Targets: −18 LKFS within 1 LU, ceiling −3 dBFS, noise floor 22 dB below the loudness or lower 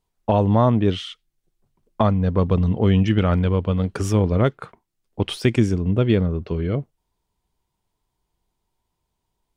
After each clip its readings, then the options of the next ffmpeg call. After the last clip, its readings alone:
integrated loudness −20.5 LKFS; sample peak −7.0 dBFS; target loudness −18.0 LKFS
→ -af "volume=2.5dB"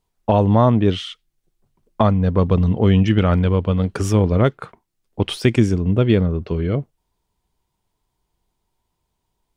integrated loudness −18.0 LKFS; sample peak −4.5 dBFS; background noise floor −75 dBFS

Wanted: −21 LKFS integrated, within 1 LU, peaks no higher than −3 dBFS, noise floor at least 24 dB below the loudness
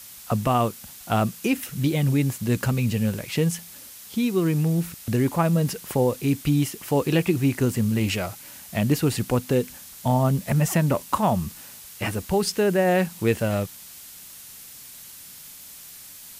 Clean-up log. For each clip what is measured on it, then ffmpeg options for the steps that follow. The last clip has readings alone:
background noise floor −43 dBFS; target noise floor −48 dBFS; integrated loudness −24.0 LKFS; sample peak −9.0 dBFS; target loudness −21.0 LKFS
→ -af "afftdn=noise_reduction=6:noise_floor=-43"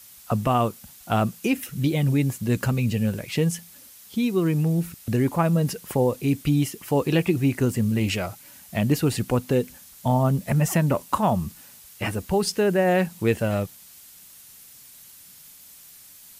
background noise floor −48 dBFS; integrated loudness −24.0 LKFS; sample peak −9.0 dBFS; target loudness −21.0 LKFS
→ -af "volume=3dB"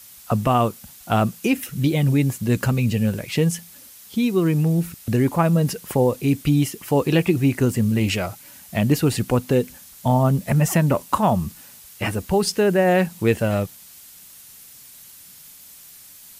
integrated loudness −21.0 LKFS; sample peak −6.0 dBFS; background noise floor −45 dBFS

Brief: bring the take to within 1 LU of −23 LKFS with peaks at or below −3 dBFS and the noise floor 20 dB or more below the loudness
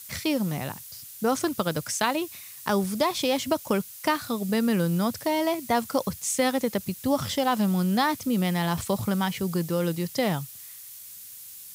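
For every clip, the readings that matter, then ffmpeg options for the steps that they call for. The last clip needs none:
background noise floor −44 dBFS; target noise floor −47 dBFS; integrated loudness −26.5 LKFS; sample peak −8.5 dBFS; target loudness −23.0 LKFS
→ -af "afftdn=noise_reduction=6:noise_floor=-44"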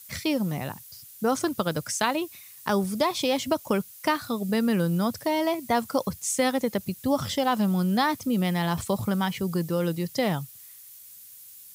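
background noise floor −48 dBFS; integrated loudness −26.5 LKFS; sample peak −8.5 dBFS; target loudness −23.0 LKFS
→ -af "volume=3.5dB"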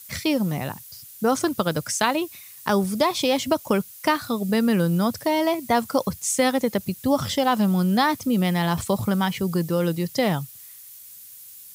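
integrated loudness −23.0 LKFS; sample peak −5.0 dBFS; background noise floor −44 dBFS

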